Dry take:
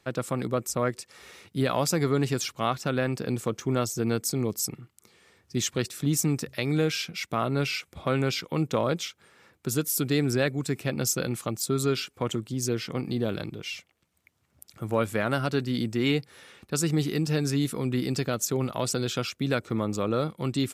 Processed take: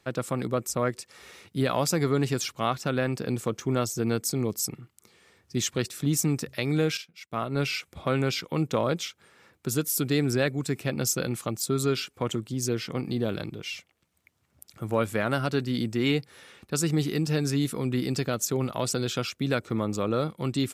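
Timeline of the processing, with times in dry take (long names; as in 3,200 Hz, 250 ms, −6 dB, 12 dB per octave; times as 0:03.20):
0:06.97–0:07.58: expander for the loud parts 2.5 to 1, over −40 dBFS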